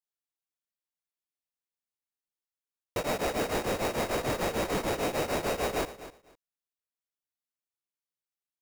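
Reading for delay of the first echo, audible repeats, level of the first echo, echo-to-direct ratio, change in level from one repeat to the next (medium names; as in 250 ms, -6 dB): 251 ms, 2, -14.5 dB, -14.5 dB, -15.0 dB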